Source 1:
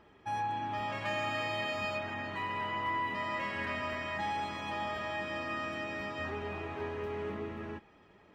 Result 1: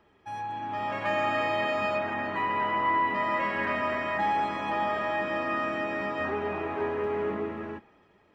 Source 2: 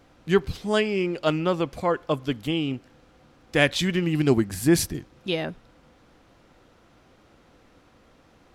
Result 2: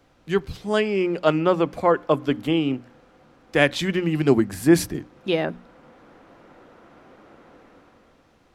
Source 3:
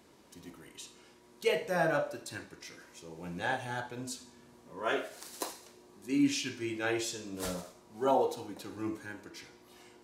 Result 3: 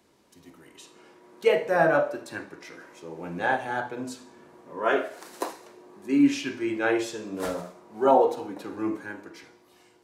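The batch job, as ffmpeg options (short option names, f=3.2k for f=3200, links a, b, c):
-filter_complex "[0:a]bandreject=f=60:t=h:w=6,bandreject=f=120:t=h:w=6,bandreject=f=180:t=h:w=6,bandreject=f=240:t=h:w=6,bandreject=f=300:t=h:w=6,acrossover=split=170|2200[a][b][c];[b]dynaudnorm=f=150:g=11:m=11.5dB[d];[a][d][c]amix=inputs=3:normalize=0,volume=-2.5dB"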